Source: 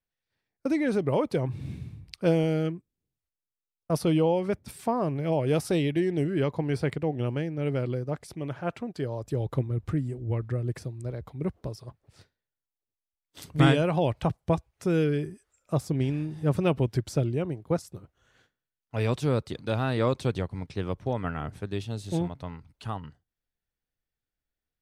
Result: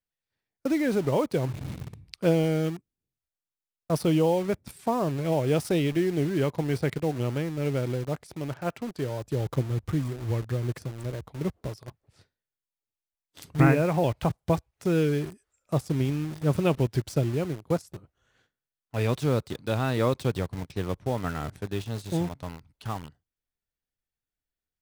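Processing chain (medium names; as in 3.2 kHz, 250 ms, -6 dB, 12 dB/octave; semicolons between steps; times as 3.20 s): 13.60–14.04 s: steep low-pass 2.6 kHz 96 dB/octave; in parallel at -3 dB: bit crusher 6-bit; on the sum: trim -4 dB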